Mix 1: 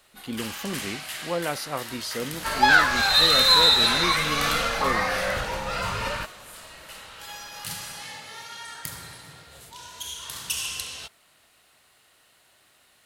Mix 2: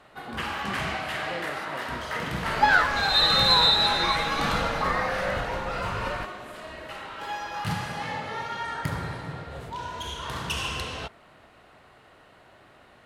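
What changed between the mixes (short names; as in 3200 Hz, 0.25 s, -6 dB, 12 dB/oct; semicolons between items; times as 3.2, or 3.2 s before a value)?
speech -8.5 dB; first sound: remove pre-emphasis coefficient 0.8; master: add high shelf 2500 Hz -11.5 dB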